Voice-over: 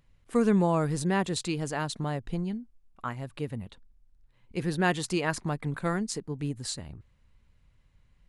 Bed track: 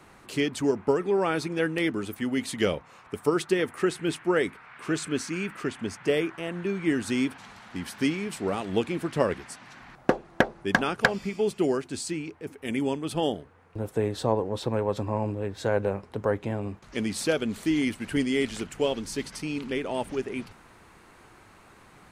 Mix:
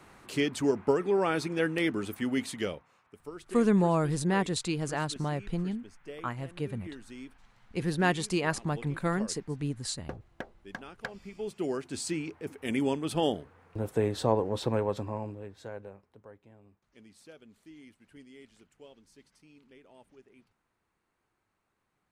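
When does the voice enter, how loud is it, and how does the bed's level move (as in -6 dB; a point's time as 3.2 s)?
3.20 s, -0.5 dB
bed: 2.38 s -2 dB
3.15 s -19 dB
10.92 s -19 dB
12.08 s -1 dB
14.75 s -1 dB
16.36 s -26.5 dB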